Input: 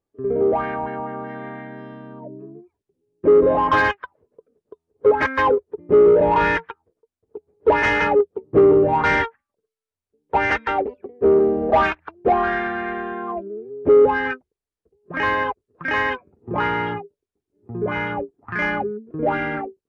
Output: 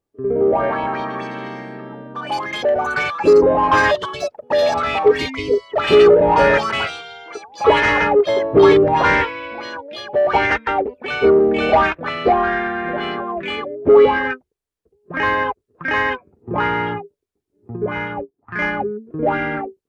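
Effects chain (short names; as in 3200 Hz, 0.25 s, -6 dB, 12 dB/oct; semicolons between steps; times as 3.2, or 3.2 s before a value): 4.7–5.65 spectral repair 500–2100 Hz; echoes that change speed 0.335 s, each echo +6 st, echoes 3, each echo -6 dB; 17.76–18.79 upward expander 1.5:1, over -42 dBFS; gain +2.5 dB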